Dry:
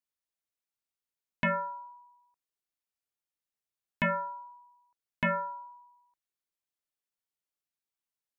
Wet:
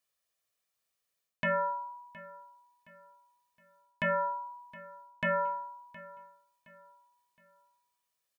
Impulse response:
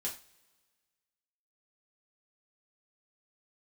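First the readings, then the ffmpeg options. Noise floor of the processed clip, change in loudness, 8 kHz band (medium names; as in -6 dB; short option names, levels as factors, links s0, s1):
-84 dBFS, -1.0 dB, no reading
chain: -af "lowshelf=f=76:g=-11.5,aecho=1:1:1.7:0.47,areverse,acompressor=threshold=0.0158:ratio=6,areverse,aecho=1:1:717|1434|2151:0.112|0.0426|0.0162,volume=2.51"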